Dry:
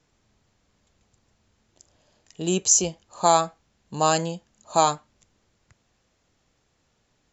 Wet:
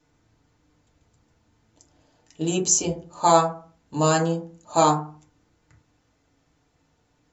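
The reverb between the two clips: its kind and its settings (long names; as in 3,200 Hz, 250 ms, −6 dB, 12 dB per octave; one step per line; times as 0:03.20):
feedback delay network reverb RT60 0.41 s, low-frequency decay 1.3×, high-frequency decay 0.3×, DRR −2.5 dB
level −3 dB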